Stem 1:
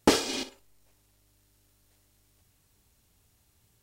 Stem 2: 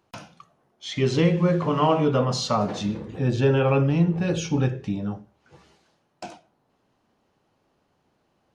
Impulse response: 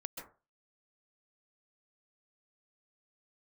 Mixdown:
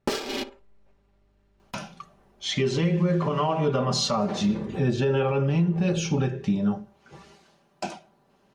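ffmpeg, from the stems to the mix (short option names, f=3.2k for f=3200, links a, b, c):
-filter_complex "[0:a]adynamicsmooth=sensitivity=5.5:basefreq=1.8k,volume=-0.5dB[a];[1:a]adelay=1600,volume=-0.5dB[b];[a][b]amix=inputs=2:normalize=0,aecho=1:1:5.1:0.52,dynaudnorm=f=100:g=3:m=5dB,alimiter=limit=-15dB:level=0:latency=1:release=317"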